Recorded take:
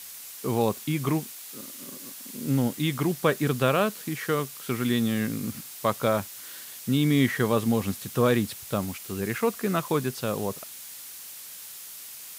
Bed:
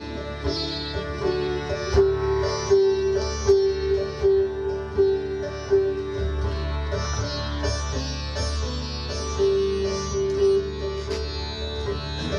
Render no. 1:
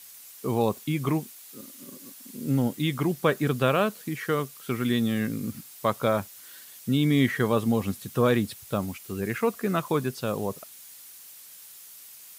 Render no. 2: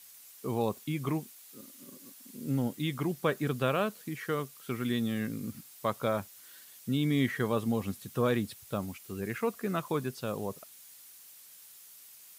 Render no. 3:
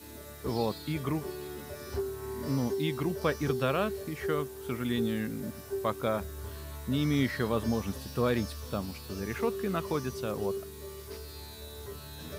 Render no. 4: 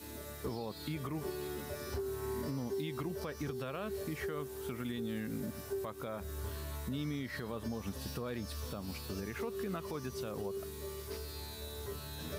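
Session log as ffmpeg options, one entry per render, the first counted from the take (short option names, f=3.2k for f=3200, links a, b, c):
-af "afftdn=nr=7:nf=-42"
-af "volume=-6dB"
-filter_complex "[1:a]volume=-15.5dB[a];[0:a][a]amix=inputs=2:normalize=0"
-af "acompressor=threshold=-31dB:ratio=6,alimiter=level_in=5dB:limit=-24dB:level=0:latency=1:release=153,volume=-5dB"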